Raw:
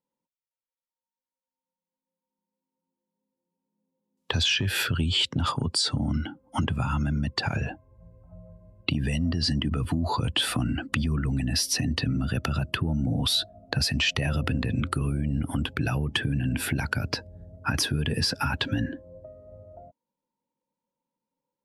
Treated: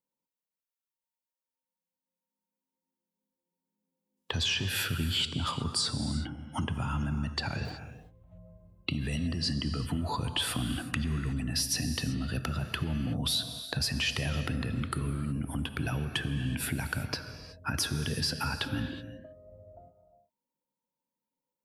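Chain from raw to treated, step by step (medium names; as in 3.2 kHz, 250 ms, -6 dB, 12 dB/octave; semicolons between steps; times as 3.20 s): 7.65–8.38 s: median filter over 25 samples; treble shelf 11 kHz +9 dB; gated-style reverb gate 400 ms flat, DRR 8 dB; trim -6 dB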